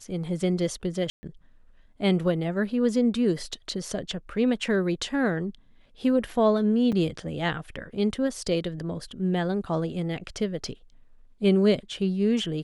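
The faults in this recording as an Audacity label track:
1.100000	1.230000	dropout 130 ms
6.920000	6.930000	dropout 5.4 ms

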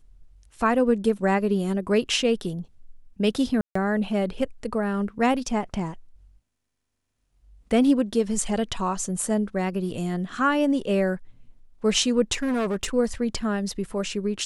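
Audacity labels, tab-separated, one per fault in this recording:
3.610000	3.750000	dropout 144 ms
12.330000	12.850000	clipped -21 dBFS

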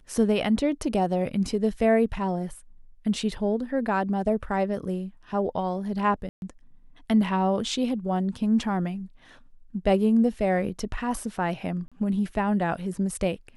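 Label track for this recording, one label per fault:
6.290000	6.420000	dropout 131 ms
11.880000	11.920000	dropout 36 ms

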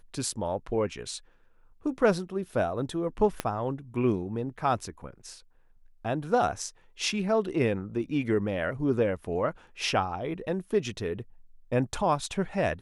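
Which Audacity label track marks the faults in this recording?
3.400000	3.400000	pop -13 dBFS

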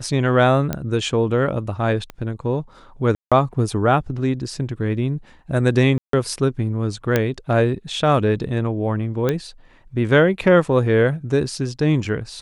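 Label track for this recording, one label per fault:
0.730000	0.730000	pop -9 dBFS
2.100000	2.100000	pop -18 dBFS
3.150000	3.320000	dropout 166 ms
5.980000	6.130000	dropout 153 ms
7.160000	7.160000	pop -4 dBFS
9.290000	9.290000	pop -8 dBFS

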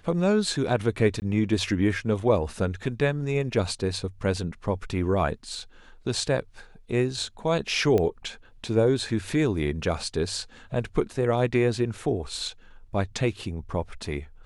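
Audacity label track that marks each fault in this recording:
1.200000	1.220000	dropout 19 ms
7.980000	7.980000	pop -14 dBFS

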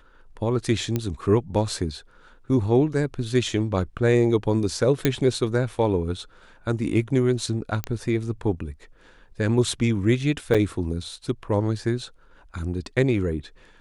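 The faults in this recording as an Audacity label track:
0.960000	0.960000	pop -11 dBFS
5.050000	5.050000	pop -6 dBFS
7.840000	7.840000	pop -12 dBFS
10.540000	10.550000	dropout 6.1 ms

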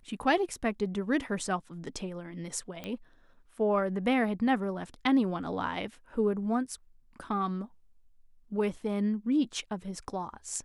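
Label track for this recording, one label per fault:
2.840000	2.840000	pop -23 dBFS

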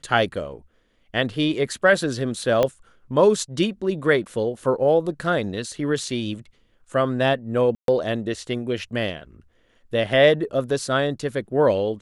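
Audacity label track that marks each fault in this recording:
2.630000	2.630000	pop -8 dBFS
7.750000	7.880000	dropout 132 ms

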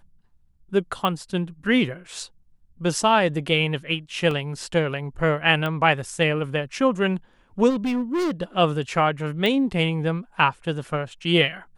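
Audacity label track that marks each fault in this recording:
1.050000	1.050000	pop -12 dBFS
4.310000	4.310000	dropout 2.4 ms
5.660000	5.660000	pop -15 dBFS
7.690000	8.310000	clipped -20.5 dBFS
9.460000	9.460000	pop -12 dBFS

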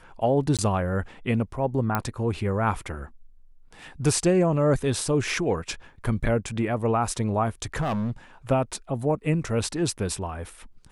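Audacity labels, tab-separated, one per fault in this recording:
0.570000	0.590000	dropout 17 ms
1.950000	1.950000	pop -10 dBFS
7.800000	8.110000	clipped -23 dBFS

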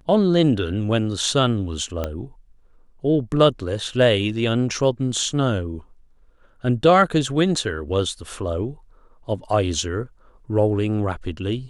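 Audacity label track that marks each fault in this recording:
2.040000	2.040000	pop -12 dBFS

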